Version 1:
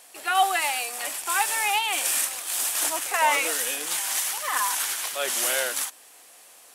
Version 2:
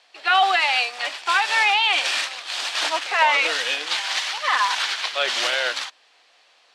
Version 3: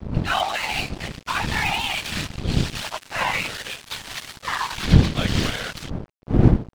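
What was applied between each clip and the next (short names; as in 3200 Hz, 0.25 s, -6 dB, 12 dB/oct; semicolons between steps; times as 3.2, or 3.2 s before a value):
EQ curve 200 Hz 0 dB, 580 Hz +8 dB, 4300 Hz +14 dB, 13000 Hz -25 dB; limiter -8.5 dBFS, peak gain reduction 8.5 dB; upward expander 1.5:1, over -40 dBFS
wind noise 150 Hz -19 dBFS; whisperiser; crossover distortion -26 dBFS; gain -3 dB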